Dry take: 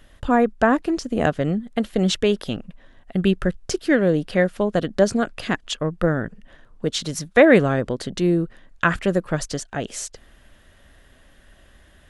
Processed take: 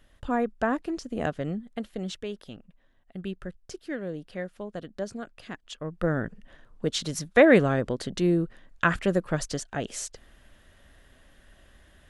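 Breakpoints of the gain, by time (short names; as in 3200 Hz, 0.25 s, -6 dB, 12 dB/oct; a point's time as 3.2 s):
1.59 s -9 dB
2.21 s -16 dB
5.62 s -16 dB
6.17 s -4 dB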